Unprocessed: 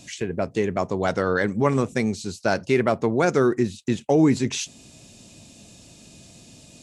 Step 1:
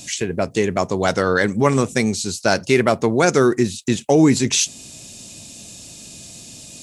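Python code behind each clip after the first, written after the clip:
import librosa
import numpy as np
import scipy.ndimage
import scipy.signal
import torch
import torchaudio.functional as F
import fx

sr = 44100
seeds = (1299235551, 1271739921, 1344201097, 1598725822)

y = fx.high_shelf(x, sr, hz=3800.0, db=11.0)
y = y * librosa.db_to_amplitude(4.0)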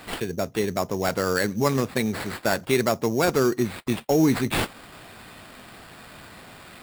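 y = fx.sample_hold(x, sr, seeds[0], rate_hz=6100.0, jitter_pct=0)
y = y * librosa.db_to_amplitude(-6.0)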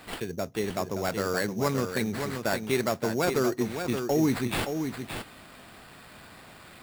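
y = x + 10.0 ** (-7.0 / 20.0) * np.pad(x, (int(572 * sr / 1000.0), 0))[:len(x)]
y = y * librosa.db_to_amplitude(-5.0)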